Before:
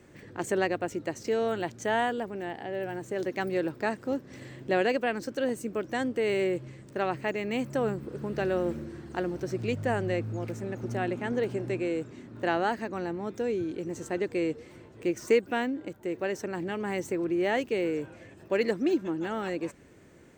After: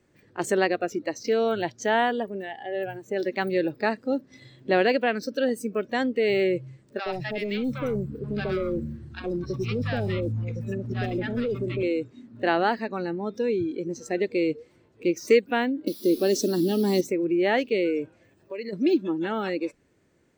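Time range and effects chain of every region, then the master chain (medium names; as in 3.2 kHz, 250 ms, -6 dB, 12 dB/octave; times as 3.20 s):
6.99–11.83 s: bass shelf 190 Hz +3.5 dB + hard clipper -27 dBFS + three bands offset in time mids, lows, highs 70/130 ms, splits 750/5700 Hz
15.87–17.01 s: FFT filter 140 Hz 0 dB, 260 Hz +11 dB, 730 Hz -2 dB, 2.4 kHz -8 dB, 4.1 kHz +13 dB, 11 kHz +5 dB + word length cut 8-bit, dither triangular
18.24–18.73 s: compression 5:1, threshold -35 dBFS + word length cut 12-bit, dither none
whole clip: spectral noise reduction 15 dB; peaking EQ 4.5 kHz +3.5 dB 0.65 oct; trim +4.5 dB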